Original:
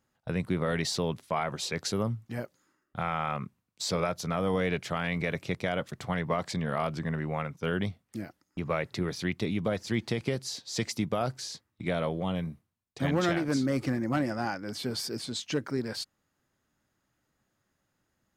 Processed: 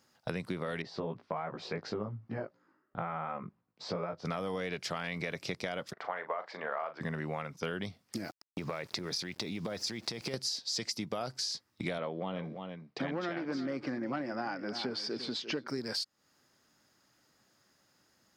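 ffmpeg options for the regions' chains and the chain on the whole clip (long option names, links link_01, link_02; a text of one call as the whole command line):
ffmpeg -i in.wav -filter_complex "[0:a]asettb=1/sr,asplit=3[link_01][link_02][link_03];[link_01]atrim=end=0.824[link_04];[link_02]atrim=start=0.82:end=4.25,asetpts=PTS-STARTPTS,afade=type=in:duration=0.004:curve=qsin,afade=type=out:start_time=3.426:duration=0.004:curve=qsin,lowpass=1400,flanger=delay=17:depth=2.4:speed=2.8[link_05];[link_03]atrim=start=4.246[link_06];[link_04][link_05]acrossfade=duration=0.004:curve1=hsin:curve2=qsin[link_07];[link_07][link_06]acrossfade=duration=0.004:curve1=qsin:curve2=hsin,asettb=1/sr,asplit=3[link_08][link_09][link_10];[link_08]atrim=end=5.934[link_11];[link_09]atrim=start=5.93:end=7.01,asetpts=PTS-STARTPTS,afade=type=in:duration=0.004:curve=qsin,afade=type=out:start_time=1.076:duration=0.004:curve=qsin,asuperpass=centerf=980:order=4:qfactor=0.72,asplit=2[link_12][link_13];[link_13]adelay=38,volume=-11.5dB[link_14];[link_12][link_14]amix=inputs=2:normalize=0,atrim=end_sample=47628[link_15];[link_10]atrim=start=7.006[link_16];[link_11][link_15]acrossfade=duration=0.004:curve1=hsin:curve2=qsin[link_17];[link_17][link_16]acrossfade=duration=0.004:curve1=qsin:curve2=hsin,asettb=1/sr,asplit=3[link_18][link_19][link_20];[link_18]atrim=end=8.174[link_21];[link_19]atrim=start=8.17:end=10.34,asetpts=PTS-STARTPTS,afade=type=in:duration=0.004:curve=qsin,afade=type=out:start_time=2.166:duration=0.004:curve=qsin,bandreject=frequency=3000:width=16,acompressor=threshold=-35dB:ratio=6:attack=3.2:release=140:knee=1:detection=peak,aeval=exprs='val(0)*gte(abs(val(0)),0.00119)':channel_layout=same[link_22];[link_20]atrim=start=10.336[link_23];[link_21][link_22]acrossfade=duration=0.004:curve1=hsin:curve2=qsin[link_24];[link_24][link_23]acrossfade=duration=0.004:curve1=qsin:curve2=hsin,asettb=1/sr,asplit=3[link_25][link_26][link_27];[link_25]atrim=end=11.984[link_28];[link_26]atrim=start=11.98:end=15.68,asetpts=PTS-STARTPTS,afade=type=in:duration=0.004:curve=qsin,afade=type=out:start_time=3.696:duration=0.004:curve=qsin,highpass=160,lowpass=2600,aecho=1:1:345:0.178,atrim=end_sample=163170[link_29];[link_27]atrim=start=15.676[link_30];[link_28][link_29]acrossfade=duration=0.004:curve1=hsin:curve2=qsin[link_31];[link_31][link_30]acrossfade=duration=0.004:curve1=qsin:curve2=hsin,highpass=frequency=220:poles=1,equalizer=frequency=5000:width=2.5:gain=10,acompressor=threshold=-41dB:ratio=6,volume=7.5dB" out.wav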